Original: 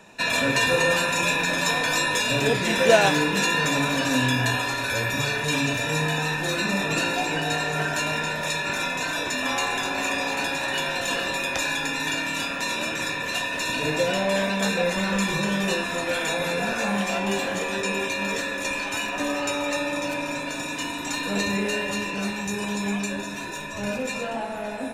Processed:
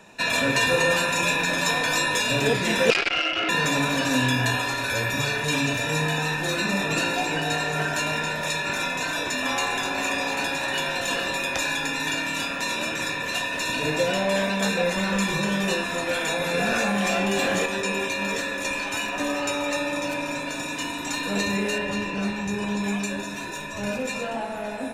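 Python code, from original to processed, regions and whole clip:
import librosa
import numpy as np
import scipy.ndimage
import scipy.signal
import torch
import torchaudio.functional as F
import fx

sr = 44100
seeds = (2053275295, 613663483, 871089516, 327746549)

y = fx.chain(x, sr, fx.freq_invert(carrier_hz=3100),
    fx.transformer_sat(knee_hz=3700.0), at=(2.9, 3.49))
y = fx.chain(y, sr, fx.notch(hz=950.0, q=12.0),
    fx.env_flatten(amount_pct=100), at=(16.54, 17.66))
y = fx.chain(y, sr, fx.lowpass(hz=3800.0, slope=6),
    fx.low_shelf(hz=180.0, db=5.0), at=(21.78, 22.84))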